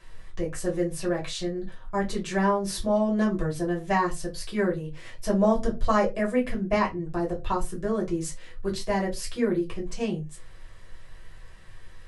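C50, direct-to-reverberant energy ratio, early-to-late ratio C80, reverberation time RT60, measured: 14.5 dB, -3.5 dB, 23.0 dB, not exponential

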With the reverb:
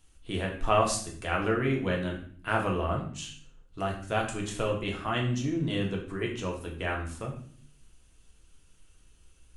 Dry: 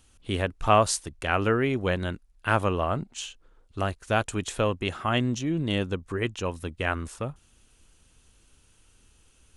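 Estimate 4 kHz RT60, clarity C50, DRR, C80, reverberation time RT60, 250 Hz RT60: 0.45 s, 7.0 dB, -1.0 dB, 10.5 dB, 0.55 s, 0.85 s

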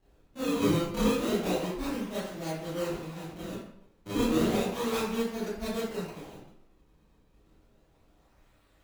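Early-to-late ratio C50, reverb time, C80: 0.5 dB, 0.75 s, 4.5 dB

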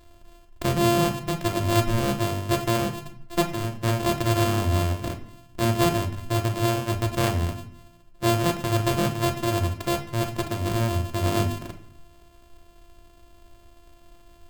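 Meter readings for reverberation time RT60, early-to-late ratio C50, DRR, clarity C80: 0.60 s, 11.5 dB, 4.5 dB, 15.0 dB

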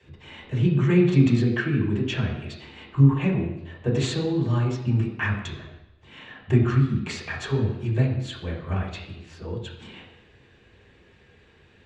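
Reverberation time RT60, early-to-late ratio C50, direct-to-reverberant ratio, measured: 0.90 s, 5.5 dB, -4.5 dB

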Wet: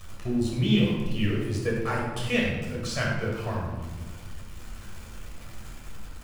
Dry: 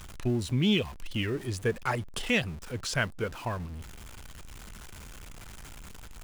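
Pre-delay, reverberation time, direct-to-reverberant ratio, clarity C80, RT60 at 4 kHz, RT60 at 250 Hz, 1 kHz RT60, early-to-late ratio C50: 10 ms, 1.3 s, -4.0 dB, 3.5 dB, 0.80 s, 2.3 s, 1.2 s, 0.5 dB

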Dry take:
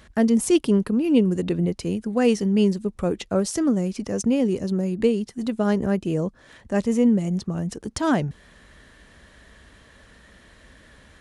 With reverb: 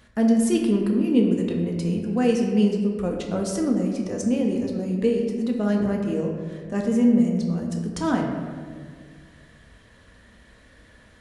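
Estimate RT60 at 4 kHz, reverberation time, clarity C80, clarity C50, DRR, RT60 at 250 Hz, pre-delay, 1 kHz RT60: 1.0 s, 1.9 s, 5.0 dB, 3.5 dB, 0.5 dB, 2.2 s, 4 ms, 1.6 s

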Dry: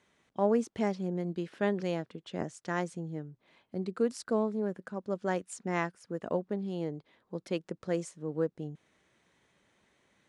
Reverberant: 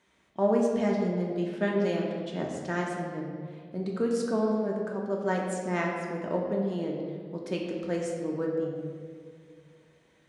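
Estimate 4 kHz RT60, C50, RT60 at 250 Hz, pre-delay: 1.3 s, 2.5 dB, 2.6 s, 3 ms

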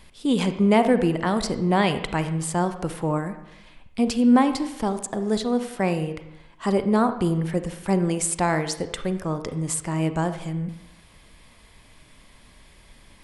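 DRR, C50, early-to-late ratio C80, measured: 9.5 dB, 10.5 dB, 13.0 dB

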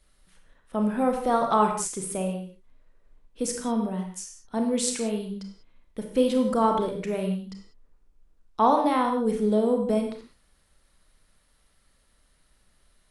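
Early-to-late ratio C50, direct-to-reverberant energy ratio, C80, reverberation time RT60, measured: 5.5 dB, 3.0 dB, 8.5 dB, not exponential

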